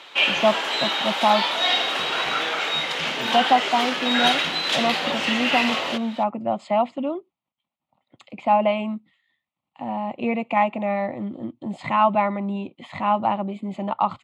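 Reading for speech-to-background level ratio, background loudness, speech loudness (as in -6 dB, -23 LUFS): -2.5 dB, -22.0 LUFS, -24.5 LUFS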